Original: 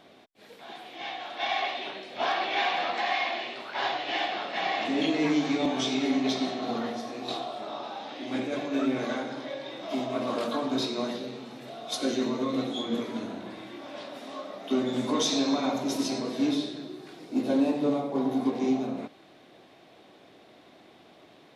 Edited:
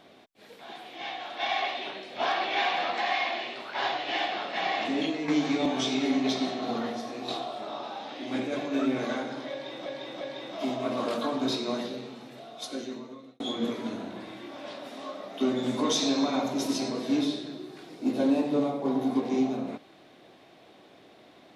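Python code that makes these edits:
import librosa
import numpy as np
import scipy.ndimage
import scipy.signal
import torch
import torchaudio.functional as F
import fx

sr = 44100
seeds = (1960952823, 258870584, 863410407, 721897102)

y = fx.edit(x, sr, fx.fade_out_to(start_s=4.75, length_s=0.53, curve='qsin', floor_db=-10.0),
    fx.repeat(start_s=9.51, length_s=0.35, count=3),
    fx.fade_out_span(start_s=11.21, length_s=1.49), tone=tone)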